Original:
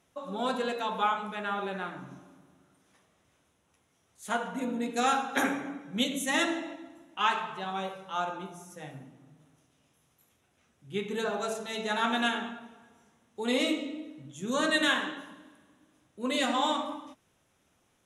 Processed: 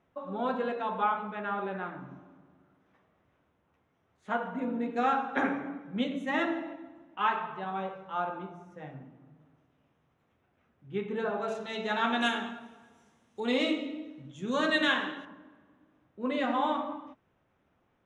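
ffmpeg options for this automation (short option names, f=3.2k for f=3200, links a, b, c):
-af "asetnsamples=n=441:p=0,asendcmd='11.48 lowpass f 3700;12.21 lowpass f 8700;13.4 lowpass f 4000;15.25 lowpass f 1900',lowpass=1.9k"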